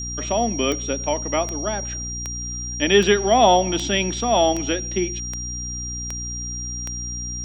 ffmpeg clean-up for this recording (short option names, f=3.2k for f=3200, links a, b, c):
-af "adeclick=t=4,bandreject=f=60.5:t=h:w=4,bandreject=f=121:t=h:w=4,bandreject=f=181.5:t=h:w=4,bandreject=f=242:t=h:w=4,bandreject=f=302.5:t=h:w=4,bandreject=f=5.7k:w=30"